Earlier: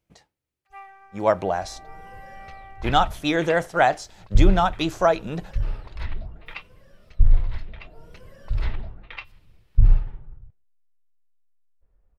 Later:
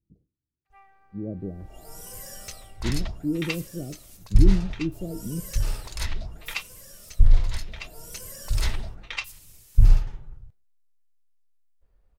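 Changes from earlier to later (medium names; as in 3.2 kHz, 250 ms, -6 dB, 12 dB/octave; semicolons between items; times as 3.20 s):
speech: add inverse Chebyshev low-pass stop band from 870 Hz, stop band 50 dB; first sound -12.0 dB; second sound: remove distance through air 400 m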